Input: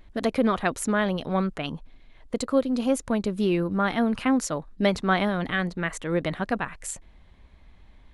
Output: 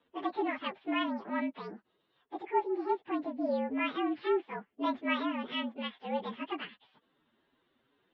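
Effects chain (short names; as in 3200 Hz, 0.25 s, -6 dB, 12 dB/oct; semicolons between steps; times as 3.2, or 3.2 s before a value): pitch shift by moving bins +10 st; mistuned SSB -76 Hz 270–3600 Hz; gain -6 dB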